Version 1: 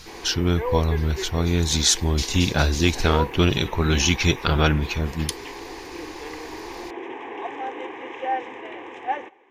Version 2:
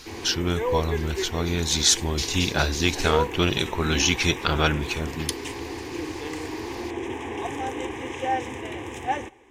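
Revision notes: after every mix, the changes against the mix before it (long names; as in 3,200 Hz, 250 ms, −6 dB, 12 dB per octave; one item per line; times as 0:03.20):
background: remove band-pass filter 510–2,600 Hz
master: add low-shelf EQ 390 Hz −6 dB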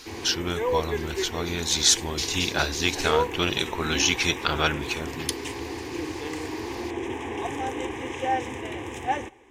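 speech: add low-shelf EQ 380 Hz −7.5 dB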